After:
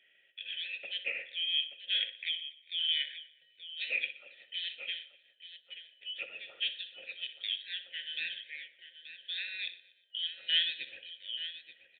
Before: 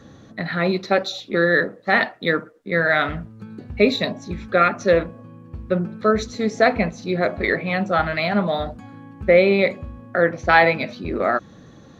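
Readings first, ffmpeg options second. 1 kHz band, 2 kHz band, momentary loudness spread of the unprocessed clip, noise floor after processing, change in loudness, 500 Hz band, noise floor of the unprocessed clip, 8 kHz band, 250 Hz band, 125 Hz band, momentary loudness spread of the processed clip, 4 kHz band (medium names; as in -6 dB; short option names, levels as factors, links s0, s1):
under -40 dB, -17.5 dB, 16 LU, -67 dBFS, -15.0 dB, under -40 dB, -46 dBFS, no reading, under -40 dB, under -40 dB, 19 LU, +1.0 dB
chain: -filter_complex "[0:a]afftfilt=real='real(if(lt(b,272),68*(eq(floor(b/68),0)*3+eq(floor(b/68),1)*2+eq(floor(b/68),2)*1+eq(floor(b/68),3)*0)+mod(b,68),b),0)':imag='imag(if(lt(b,272),68*(eq(floor(b/68),0)*3+eq(floor(b/68),1)*2+eq(floor(b/68),2)*1+eq(floor(b/68),3)*0)+mod(b,68),b),0)':win_size=2048:overlap=0.75,asplit=3[s0][s1][s2];[s0]bandpass=f=530:t=q:w=8,volume=1[s3];[s1]bandpass=f=1840:t=q:w=8,volume=0.501[s4];[s2]bandpass=f=2480:t=q:w=8,volume=0.355[s5];[s3][s4][s5]amix=inputs=3:normalize=0,asplit=2[s6][s7];[s7]aecho=0:1:62|880:0.237|0.237[s8];[s6][s8]amix=inputs=2:normalize=0,aresample=8000,aresample=44100,asplit=2[s9][s10];[s10]aecho=0:1:121|242|363:0.1|0.046|0.0212[s11];[s9][s11]amix=inputs=2:normalize=0,volume=1.78"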